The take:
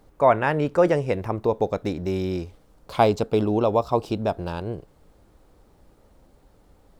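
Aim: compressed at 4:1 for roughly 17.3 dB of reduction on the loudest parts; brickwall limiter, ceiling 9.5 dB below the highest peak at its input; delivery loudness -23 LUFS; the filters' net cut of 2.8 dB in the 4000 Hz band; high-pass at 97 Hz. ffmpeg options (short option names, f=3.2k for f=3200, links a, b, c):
-af "highpass=97,equalizer=f=4k:t=o:g=-3.5,acompressor=threshold=-34dB:ratio=4,volume=16dB,alimiter=limit=-10dB:level=0:latency=1"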